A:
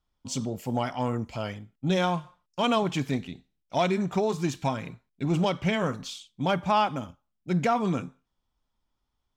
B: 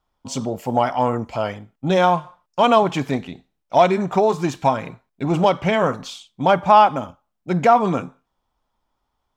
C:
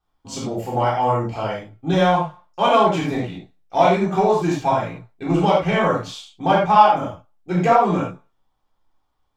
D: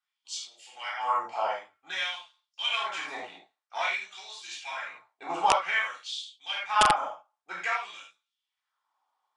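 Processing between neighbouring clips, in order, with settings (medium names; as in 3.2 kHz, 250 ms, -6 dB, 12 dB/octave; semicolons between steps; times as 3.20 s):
peaking EQ 790 Hz +10 dB 2.2 oct; trim +2.5 dB
reverberation, pre-delay 3 ms, DRR -6.5 dB; trim -7.5 dB
LFO high-pass sine 0.52 Hz 820–3700 Hz; integer overflow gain 5.5 dB; trim -6.5 dB; Vorbis 64 kbps 22.05 kHz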